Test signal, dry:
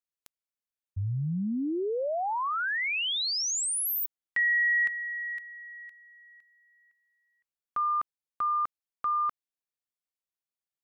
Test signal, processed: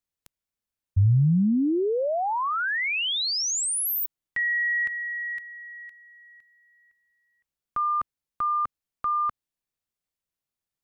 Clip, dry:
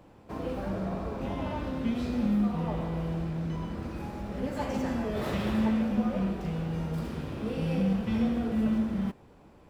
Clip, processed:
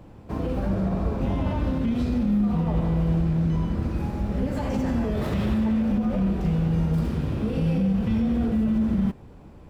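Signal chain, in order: limiter -25 dBFS; low shelf 220 Hz +11 dB; gain +3 dB

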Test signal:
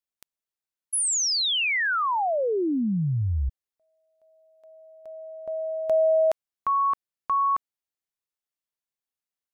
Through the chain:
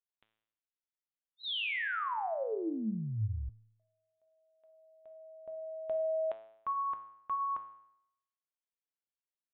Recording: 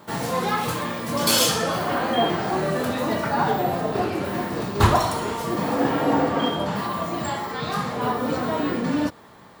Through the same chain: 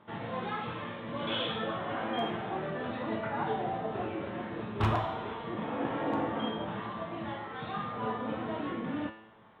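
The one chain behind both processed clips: downsampling 8000 Hz; wavefolder -9 dBFS; resonator 110 Hz, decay 0.76 s, harmonics all, mix 80%

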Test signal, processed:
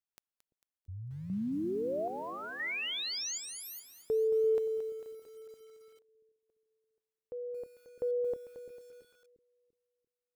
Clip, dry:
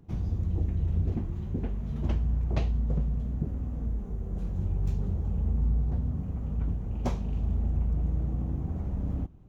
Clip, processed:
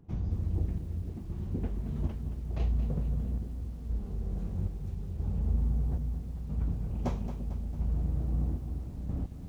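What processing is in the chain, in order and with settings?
high shelf 2200 Hz -4 dB; chopper 0.77 Hz, depth 60%, duty 60%; on a send: analogue delay 0.341 s, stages 1024, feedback 44%, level -12 dB; on the sum: lo-fi delay 0.224 s, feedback 55%, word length 9-bit, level -10.5 dB; gain -2 dB

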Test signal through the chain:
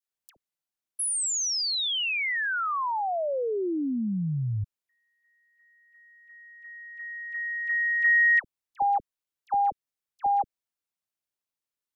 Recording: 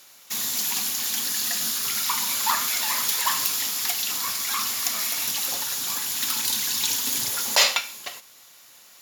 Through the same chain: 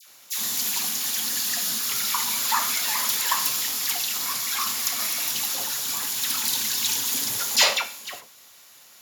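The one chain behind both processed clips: dispersion lows, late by 77 ms, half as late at 1300 Hz

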